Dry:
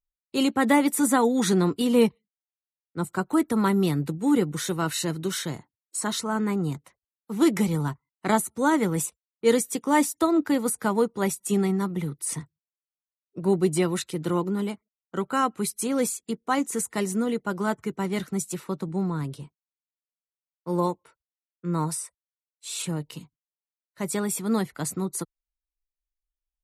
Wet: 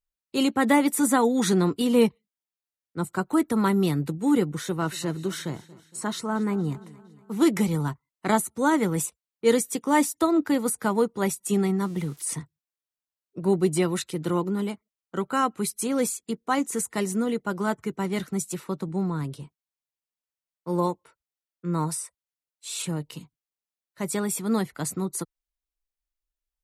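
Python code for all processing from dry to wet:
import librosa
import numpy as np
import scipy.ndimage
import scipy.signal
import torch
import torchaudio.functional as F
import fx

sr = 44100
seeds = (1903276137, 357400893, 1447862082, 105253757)

y = fx.chain(x, sr, fx.high_shelf(hz=2500.0, db=-6.5),
    fx.echo_feedback(ms=232, feedback_pct=52, wet_db=-20.0), at=(4.48, 7.31))
y = fx.chain(y, sr, fx.crossing_spikes(level_db=-33.5),
    fx.lowpass(hz=10000.0, slope=12), at=(11.85, 12.25))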